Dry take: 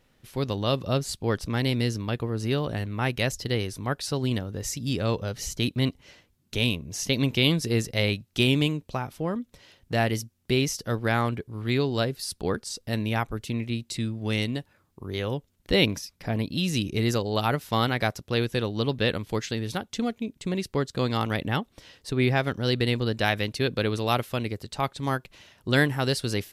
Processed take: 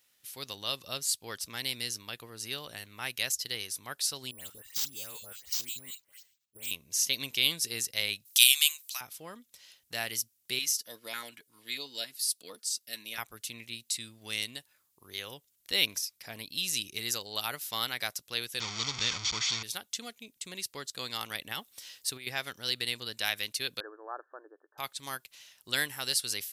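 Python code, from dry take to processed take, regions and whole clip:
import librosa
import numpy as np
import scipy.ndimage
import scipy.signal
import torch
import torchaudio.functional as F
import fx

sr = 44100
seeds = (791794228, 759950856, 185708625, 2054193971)

y = fx.chain(x, sr, fx.level_steps(step_db=17),
    fx.dispersion(late='highs', ms=124.0, hz=2200.0),
    fx.resample_bad(factor=4, down='none', up='hold'), at=(4.31, 6.71))
y = fx.chain(y, sr, fx.bessel_highpass(hz=1100.0, order=8),
    fx.tilt_eq(slope=4.5), at=(8.25, 9.01))
y = fx.chain(y, sr, fx.highpass(hz=270.0, slope=12),
    fx.notch_comb(f0_hz=390.0),
    fx.filter_held_notch(hz=11.0, low_hz=490.0, high_hz=1600.0), at=(10.59, 13.18))
y = fx.chain(y, sr, fx.delta_mod(bps=32000, step_db=-22.5),
    fx.low_shelf(hz=100.0, db=9.0),
    fx.comb(ms=0.9, depth=0.58), at=(18.6, 19.63))
y = fx.chain(y, sr, fx.high_shelf(hz=8500.0, db=5.5),
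    fx.over_compress(threshold_db=-26.0, ratio=-0.5), at=(21.51, 22.27))
y = fx.chain(y, sr, fx.brickwall_bandpass(low_hz=280.0, high_hz=1800.0),
    fx.air_absorb(metres=480.0), at=(23.8, 24.78))
y = scipy.signal.sosfilt(scipy.signal.butter(2, 50.0, 'highpass', fs=sr, output='sos'), y)
y = F.preemphasis(torch.from_numpy(y), 0.97).numpy()
y = y * librosa.db_to_amplitude(5.5)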